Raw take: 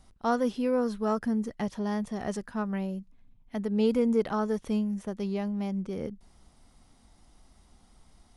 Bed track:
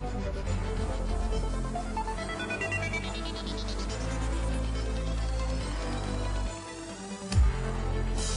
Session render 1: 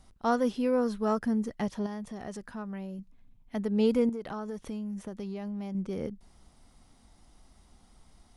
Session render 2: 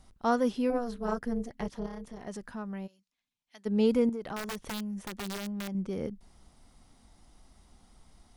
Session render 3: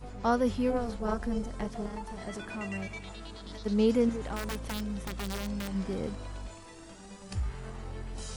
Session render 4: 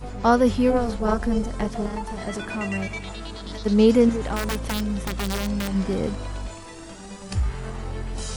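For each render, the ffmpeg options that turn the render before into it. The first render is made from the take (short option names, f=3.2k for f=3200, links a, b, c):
-filter_complex "[0:a]asettb=1/sr,asplit=3[a][b][c];[a]atrim=end=1.864[d];[b]atrim=start=1.86:end=2.99,asetpts=PTS-STARTPTS,afade=t=in:d=0.004:c=qsin,afade=t=out:st=1.126:d=0.004:c=qsin,acompressor=threshold=-40dB:ratio=2:attack=3.2:release=140:knee=1:detection=peak[e];[c]atrim=start=2.986[f];[d][e]acrossfade=d=0.004:c1=hsin:c2=qsin[g];[g][f]acrossfade=d=0.004:c1=qsin:c2=hsin,asettb=1/sr,asplit=3[h][i][j];[h]atrim=end=4.094[k];[i]atrim=start=4.09:end=5.75,asetpts=PTS-STARTPTS,afade=t=in:d=0.004:c=qsin,afade=t=out:st=1.656:d=0.004:c=qsin,acompressor=threshold=-33dB:ratio=8:attack=3.2:release=140:knee=1:detection=peak[l];[j]atrim=start=5.746[m];[k][l]acrossfade=d=0.004:c1=hsin:c2=qsin[n];[n][m]acrossfade=d=0.004:c1=qsin:c2=hsin"
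-filter_complex "[0:a]asettb=1/sr,asplit=3[a][b][c];[a]atrim=end=0.704[d];[b]atrim=start=0.7:end=2.27,asetpts=PTS-STARTPTS,afade=t=in:d=0.004:c=qsin,afade=t=out:st=1.566:d=0.004:c=qsin,tremolo=f=240:d=0.889[e];[c]atrim=start=2.266[f];[d][e]acrossfade=d=0.004:c1=hsin:c2=qsin[g];[g][f]acrossfade=d=0.004:c1=qsin:c2=hsin,asplit=3[h][i][j];[h]afade=t=out:st=2.86:d=0.02[k];[i]bandpass=f=5.1k:t=q:w=1,afade=t=in:st=2.86:d=0.02,afade=t=out:st=3.65:d=0.02[l];[j]afade=t=in:st=3.65:d=0.02[m];[k][l][m]amix=inputs=3:normalize=0,asettb=1/sr,asplit=3[n][o][p];[n]atrim=end=4.364[q];[o]atrim=start=4.36:end=5.68,asetpts=PTS-STARTPTS,afade=t=in:d=0.004:c=qsin,afade=t=out:st=1.316:d=0.004:c=qsin,aeval=exprs='(mod(35.5*val(0)+1,2)-1)/35.5':c=same[r];[p]atrim=start=5.676[s];[q][r]acrossfade=d=0.004:c1=hsin:c2=qsin[t];[t][s]acrossfade=d=0.004:c1=qsin:c2=hsin"
-filter_complex "[1:a]volume=-9.5dB[a];[0:a][a]amix=inputs=2:normalize=0"
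-af "volume=9dB"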